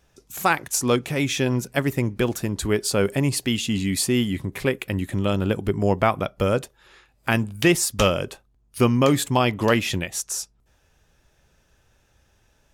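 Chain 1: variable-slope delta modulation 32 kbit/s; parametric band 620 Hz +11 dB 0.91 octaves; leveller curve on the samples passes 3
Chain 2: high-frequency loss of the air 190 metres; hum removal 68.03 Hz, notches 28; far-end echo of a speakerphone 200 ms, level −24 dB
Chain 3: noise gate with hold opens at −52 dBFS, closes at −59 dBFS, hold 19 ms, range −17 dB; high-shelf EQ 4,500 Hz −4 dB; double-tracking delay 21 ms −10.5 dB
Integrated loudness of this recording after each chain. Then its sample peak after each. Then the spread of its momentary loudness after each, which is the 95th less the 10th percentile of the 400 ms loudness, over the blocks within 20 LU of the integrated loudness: −12.5, −24.0, −22.5 LKFS; −2.5, −7.0, −5.5 dBFS; 6, 8, 8 LU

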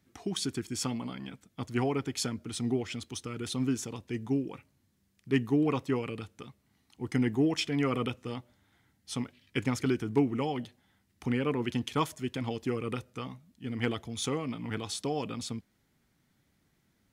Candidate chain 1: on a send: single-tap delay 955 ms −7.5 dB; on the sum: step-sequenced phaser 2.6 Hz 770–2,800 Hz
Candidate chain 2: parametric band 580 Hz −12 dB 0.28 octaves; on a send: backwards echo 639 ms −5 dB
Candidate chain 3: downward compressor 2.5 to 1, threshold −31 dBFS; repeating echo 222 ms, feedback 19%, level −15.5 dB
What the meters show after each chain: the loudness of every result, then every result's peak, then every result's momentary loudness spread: −37.0, −32.5, −36.0 LKFS; −17.5, −14.5, −18.0 dBFS; 11, 9, 10 LU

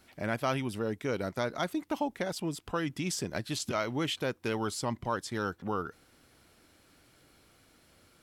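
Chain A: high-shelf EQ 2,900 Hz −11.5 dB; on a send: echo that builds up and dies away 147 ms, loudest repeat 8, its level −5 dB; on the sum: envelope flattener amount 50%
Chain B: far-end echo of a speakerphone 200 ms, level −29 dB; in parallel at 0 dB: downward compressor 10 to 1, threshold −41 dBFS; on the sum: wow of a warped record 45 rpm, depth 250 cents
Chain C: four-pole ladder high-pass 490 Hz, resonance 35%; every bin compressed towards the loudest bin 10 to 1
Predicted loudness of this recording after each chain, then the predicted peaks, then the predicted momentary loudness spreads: −27.5, −32.0, −45.5 LKFS; −14.0, −16.0, −24.0 dBFS; 3, 3, 9 LU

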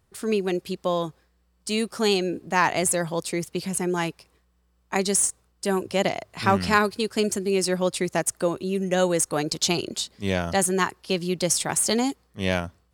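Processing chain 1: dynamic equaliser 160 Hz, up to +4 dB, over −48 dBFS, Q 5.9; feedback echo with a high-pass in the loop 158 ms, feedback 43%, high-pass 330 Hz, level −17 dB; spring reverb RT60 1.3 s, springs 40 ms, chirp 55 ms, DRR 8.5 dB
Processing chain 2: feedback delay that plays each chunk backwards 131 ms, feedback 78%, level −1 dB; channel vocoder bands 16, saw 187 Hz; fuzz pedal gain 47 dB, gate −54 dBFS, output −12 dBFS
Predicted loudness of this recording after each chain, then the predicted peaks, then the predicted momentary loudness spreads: −24.0, −14.5 LKFS; −4.5, −10.0 dBFS; 7, 1 LU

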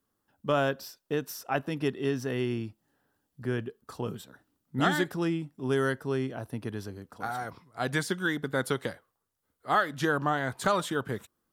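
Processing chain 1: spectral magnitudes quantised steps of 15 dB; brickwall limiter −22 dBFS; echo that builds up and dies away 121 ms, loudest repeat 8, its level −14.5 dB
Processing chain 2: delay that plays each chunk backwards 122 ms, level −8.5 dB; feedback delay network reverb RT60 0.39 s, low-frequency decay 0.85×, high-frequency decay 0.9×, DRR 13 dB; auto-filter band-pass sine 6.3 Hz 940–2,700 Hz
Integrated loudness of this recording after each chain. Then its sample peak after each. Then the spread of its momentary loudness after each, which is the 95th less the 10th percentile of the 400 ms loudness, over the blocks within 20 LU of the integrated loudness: −33.5, −38.0 LKFS; −18.5, −15.5 dBFS; 7, 19 LU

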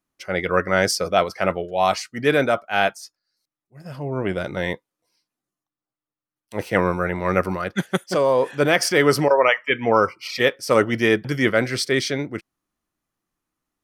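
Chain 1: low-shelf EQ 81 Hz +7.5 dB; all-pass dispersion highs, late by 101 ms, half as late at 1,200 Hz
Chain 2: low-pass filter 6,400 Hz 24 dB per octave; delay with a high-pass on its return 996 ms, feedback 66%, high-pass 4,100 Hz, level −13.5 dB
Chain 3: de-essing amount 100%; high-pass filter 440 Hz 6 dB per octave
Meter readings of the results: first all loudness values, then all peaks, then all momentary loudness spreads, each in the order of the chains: −20.5, −21.0, −26.0 LKFS; −3.0, −3.0, −9.0 dBFS; 10, 10, 9 LU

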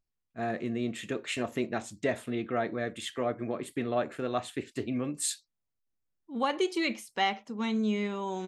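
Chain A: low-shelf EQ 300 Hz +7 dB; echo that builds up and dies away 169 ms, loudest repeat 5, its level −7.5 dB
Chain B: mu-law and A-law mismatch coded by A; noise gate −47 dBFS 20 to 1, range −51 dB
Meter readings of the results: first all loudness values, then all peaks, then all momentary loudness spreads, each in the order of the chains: −27.0, −33.5 LKFS; −11.5, −15.0 dBFS; 5, 7 LU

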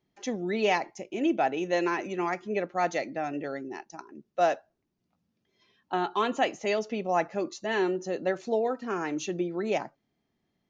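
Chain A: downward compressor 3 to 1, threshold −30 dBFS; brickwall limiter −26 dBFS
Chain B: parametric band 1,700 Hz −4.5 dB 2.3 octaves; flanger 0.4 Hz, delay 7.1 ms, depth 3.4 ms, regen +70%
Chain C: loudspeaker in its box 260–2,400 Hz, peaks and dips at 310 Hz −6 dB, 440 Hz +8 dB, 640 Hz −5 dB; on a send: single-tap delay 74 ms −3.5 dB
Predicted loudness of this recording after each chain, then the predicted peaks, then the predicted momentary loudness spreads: −36.5, −35.5, −28.5 LKFS; −26.0, −18.0, −10.0 dBFS; 6, 10, 11 LU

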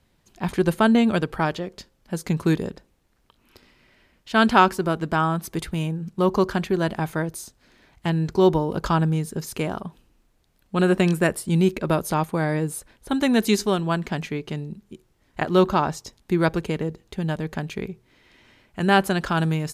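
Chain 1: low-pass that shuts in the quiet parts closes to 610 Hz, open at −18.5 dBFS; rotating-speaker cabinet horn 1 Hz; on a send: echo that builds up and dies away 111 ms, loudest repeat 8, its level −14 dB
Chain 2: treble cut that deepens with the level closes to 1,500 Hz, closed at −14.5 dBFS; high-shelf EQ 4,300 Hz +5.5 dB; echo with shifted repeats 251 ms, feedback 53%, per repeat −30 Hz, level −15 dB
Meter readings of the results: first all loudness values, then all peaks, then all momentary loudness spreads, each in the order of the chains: −24.5, −23.0 LKFS; −5.0, −4.5 dBFS; 10, 14 LU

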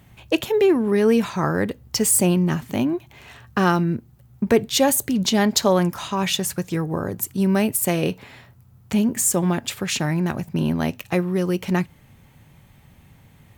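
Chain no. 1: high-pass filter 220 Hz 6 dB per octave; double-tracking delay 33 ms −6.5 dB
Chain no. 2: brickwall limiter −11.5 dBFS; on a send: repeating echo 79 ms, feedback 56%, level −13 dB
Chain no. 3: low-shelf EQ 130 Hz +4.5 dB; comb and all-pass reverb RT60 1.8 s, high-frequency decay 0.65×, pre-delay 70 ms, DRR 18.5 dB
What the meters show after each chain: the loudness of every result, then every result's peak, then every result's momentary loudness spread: −21.5, −22.0, −20.5 LKFS; −3.5, −9.5, −4.5 dBFS; 9, 9, 8 LU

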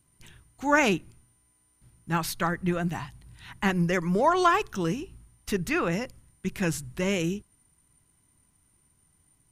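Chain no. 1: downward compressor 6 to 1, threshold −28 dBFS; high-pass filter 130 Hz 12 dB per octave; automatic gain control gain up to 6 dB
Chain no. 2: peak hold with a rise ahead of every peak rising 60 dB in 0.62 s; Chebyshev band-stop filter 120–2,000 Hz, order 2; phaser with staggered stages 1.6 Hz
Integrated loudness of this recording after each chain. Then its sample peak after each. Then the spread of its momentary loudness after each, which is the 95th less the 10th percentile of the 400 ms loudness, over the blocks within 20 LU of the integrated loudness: −28.0, −33.5 LKFS; −10.0, −12.5 dBFS; 11, 16 LU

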